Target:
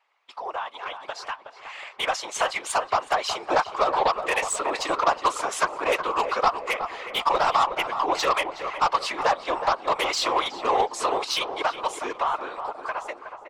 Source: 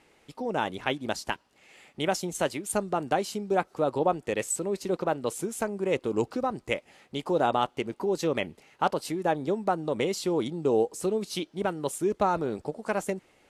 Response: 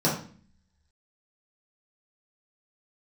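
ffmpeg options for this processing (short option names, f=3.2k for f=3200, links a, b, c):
-filter_complex "[0:a]highpass=f=710:w=0.5412,highpass=f=710:w=1.3066,agate=range=-16dB:threshold=-60dB:ratio=16:detection=peak,lowpass=4.1k,equalizer=f=1.1k:w=4.8:g=10.5,asplit=2[a][b];[b]acompressor=threshold=-43dB:ratio=5,volume=2dB[c];[a][c]amix=inputs=2:normalize=0,alimiter=limit=-20dB:level=0:latency=1:release=146,dynaudnorm=f=410:g=9:m=11dB,aeval=exprs='0.355*(cos(1*acos(clip(val(0)/0.355,-1,1)))-cos(1*PI/2))+0.0631*(cos(3*acos(clip(val(0)/0.355,-1,1)))-cos(3*PI/2))+0.0501*(cos(5*acos(clip(val(0)/0.355,-1,1)))-cos(5*PI/2))+0.00355*(cos(6*acos(clip(val(0)/0.355,-1,1)))-cos(6*PI/2))':c=same,afftfilt=real='hypot(re,im)*cos(2*PI*random(0))':imag='hypot(re,im)*sin(2*PI*random(1))':win_size=512:overlap=0.75,asplit=2[d][e];[e]adelay=368,lowpass=f=1.6k:p=1,volume=-8dB,asplit=2[f][g];[g]adelay=368,lowpass=f=1.6k:p=1,volume=0.52,asplit=2[h][i];[i]adelay=368,lowpass=f=1.6k:p=1,volume=0.52,asplit=2[j][k];[k]adelay=368,lowpass=f=1.6k:p=1,volume=0.52,asplit=2[l][m];[m]adelay=368,lowpass=f=1.6k:p=1,volume=0.52,asplit=2[n][o];[o]adelay=368,lowpass=f=1.6k:p=1,volume=0.52[p];[f][h][j][l][n][p]amix=inputs=6:normalize=0[q];[d][q]amix=inputs=2:normalize=0,volume=6dB"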